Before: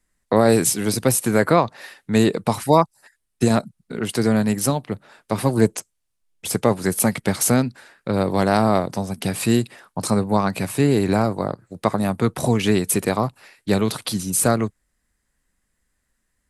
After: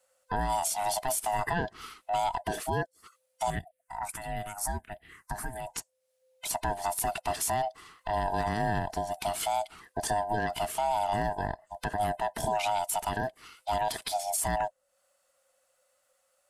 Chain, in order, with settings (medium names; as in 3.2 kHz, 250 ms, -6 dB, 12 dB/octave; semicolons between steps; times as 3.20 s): split-band scrambler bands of 500 Hz; peak limiter -13 dBFS, peak gain reduction 10.5 dB; 3.50–5.67 s: phase shifter stages 4, 1.5 Hz, lowest notch 480–1100 Hz; tape noise reduction on one side only encoder only; trim -6.5 dB